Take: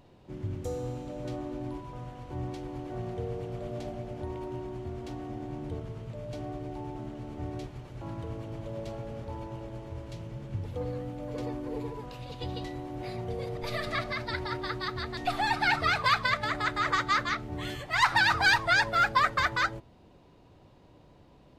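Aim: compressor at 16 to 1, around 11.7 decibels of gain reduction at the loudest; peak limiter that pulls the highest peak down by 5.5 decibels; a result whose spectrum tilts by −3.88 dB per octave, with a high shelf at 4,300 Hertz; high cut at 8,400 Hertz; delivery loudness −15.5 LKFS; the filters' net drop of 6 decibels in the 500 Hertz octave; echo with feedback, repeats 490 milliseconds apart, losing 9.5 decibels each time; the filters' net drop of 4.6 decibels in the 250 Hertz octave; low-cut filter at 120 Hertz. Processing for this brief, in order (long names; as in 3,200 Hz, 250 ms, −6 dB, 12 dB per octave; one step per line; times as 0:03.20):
high-pass filter 120 Hz
low-pass filter 8,400 Hz
parametric band 250 Hz −3 dB
parametric band 500 Hz −7 dB
high-shelf EQ 4,300 Hz −6 dB
downward compressor 16 to 1, threshold −32 dBFS
brickwall limiter −28 dBFS
repeating echo 490 ms, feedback 33%, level −9.5 dB
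level +25 dB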